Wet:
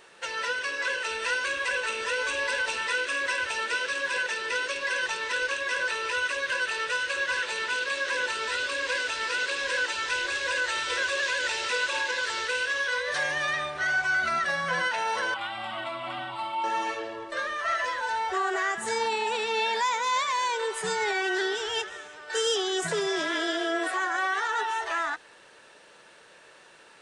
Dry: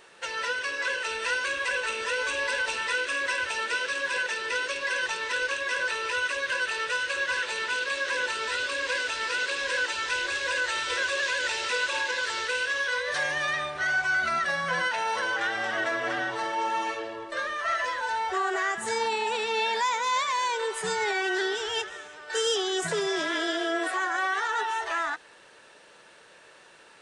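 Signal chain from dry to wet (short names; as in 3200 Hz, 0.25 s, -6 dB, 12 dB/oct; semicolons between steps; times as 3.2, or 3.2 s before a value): 15.34–16.64 fixed phaser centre 1700 Hz, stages 6; de-hum 48.36 Hz, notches 2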